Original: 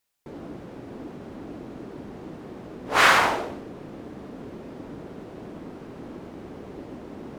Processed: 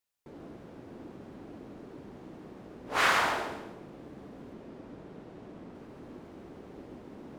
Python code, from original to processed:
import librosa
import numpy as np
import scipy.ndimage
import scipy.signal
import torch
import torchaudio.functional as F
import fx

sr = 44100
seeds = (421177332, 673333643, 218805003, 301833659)

y = fx.high_shelf(x, sr, hz=10000.0, db=-8.0, at=(4.53, 5.75))
y = fx.echo_feedback(y, sr, ms=138, feedback_pct=35, wet_db=-7.5)
y = F.gain(torch.from_numpy(y), -8.5).numpy()